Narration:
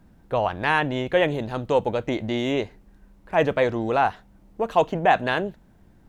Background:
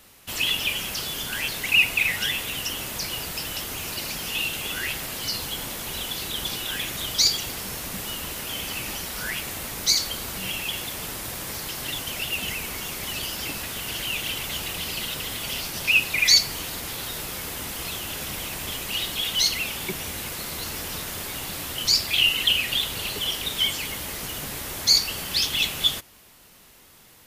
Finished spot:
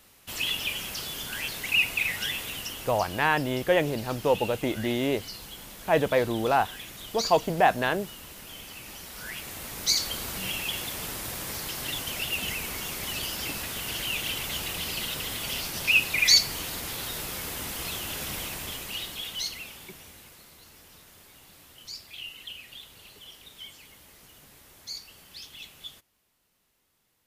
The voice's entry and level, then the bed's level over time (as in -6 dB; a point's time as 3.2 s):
2.55 s, -2.5 dB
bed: 2.48 s -5 dB
3.27 s -12 dB
8.8 s -12 dB
10.13 s -2 dB
18.38 s -2 dB
20.58 s -20.5 dB